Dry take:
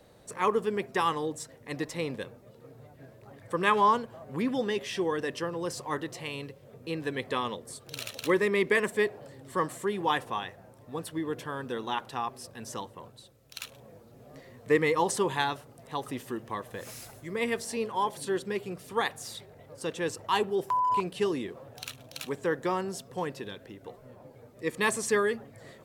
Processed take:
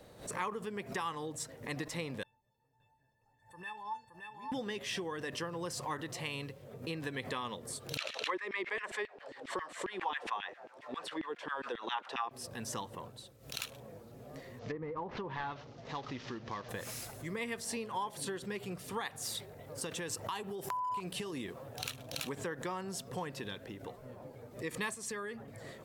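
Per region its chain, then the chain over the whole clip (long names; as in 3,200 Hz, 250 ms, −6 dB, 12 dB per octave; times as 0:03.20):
0:02.23–0:04.52: high-shelf EQ 3,000 Hz −6 dB + tuned comb filter 890 Hz, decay 0.18 s, mix 100% + single-tap delay 570 ms −4.5 dB
0:07.97–0:12.31: auto-filter high-pass saw down 7.4 Hz 260–2,800 Hz + low-pass filter 4,800 Hz
0:14.59–0:16.69: variable-slope delta modulation 32 kbit/s + treble cut that deepens with the level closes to 830 Hz, closed at −22 dBFS + downward compressor 1.5 to 1, threshold −43 dBFS
0:19.22–0:21.76: downward compressor, threshold −33 dBFS + high-shelf EQ 8,000 Hz +6.5 dB
0:24.94–0:25.48: downward compressor 3 to 1, threshold −37 dBFS + multiband upward and downward expander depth 40%
whole clip: downward compressor 6 to 1, threshold −34 dBFS; dynamic equaliser 400 Hz, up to −5 dB, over −47 dBFS, Q 1.1; background raised ahead of every attack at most 140 dB per second; level +1 dB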